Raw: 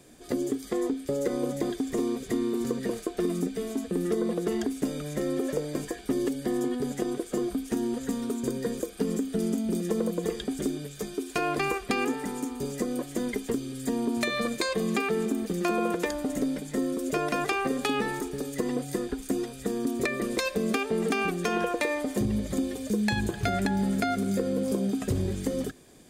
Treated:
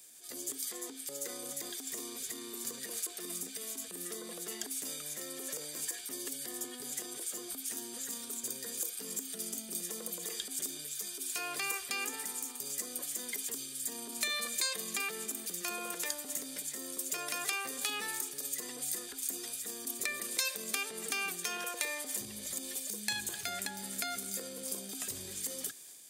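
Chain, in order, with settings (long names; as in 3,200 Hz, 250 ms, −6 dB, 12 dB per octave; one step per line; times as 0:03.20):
transient designer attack −5 dB, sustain +4 dB
high-pass filter 69 Hz
first-order pre-emphasis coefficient 0.97
level +5.5 dB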